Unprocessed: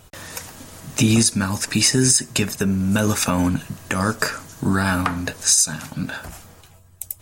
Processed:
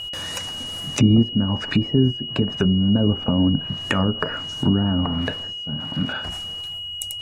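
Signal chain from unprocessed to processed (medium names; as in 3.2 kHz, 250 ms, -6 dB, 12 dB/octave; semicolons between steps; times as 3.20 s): 4.96–6.13 s: zero-crossing glitches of -16.5 dBFS; low-pass that closes with the level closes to 480 Hz, closed at -16 dBFS; wow and flutter 71 cents; whistle 2.9 kHz -31 dBFS; trim +2 dB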